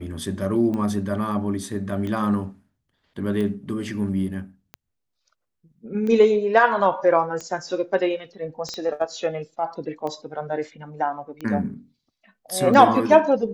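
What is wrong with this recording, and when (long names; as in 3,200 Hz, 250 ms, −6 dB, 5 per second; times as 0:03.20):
scratch tick 45 rpm −19 dBFS
0:08.69: click −19 dBFS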